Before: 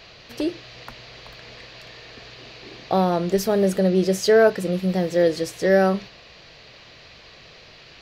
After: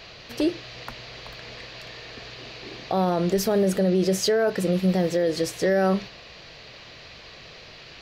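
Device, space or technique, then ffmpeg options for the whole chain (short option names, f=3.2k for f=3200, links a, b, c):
stacked limiters: -af "alimiter=limit=-12.5dB:level=0:latency=1:release=122,alimiter=limit=-16dB:level=0:latency=1:release=19,volume=2dB"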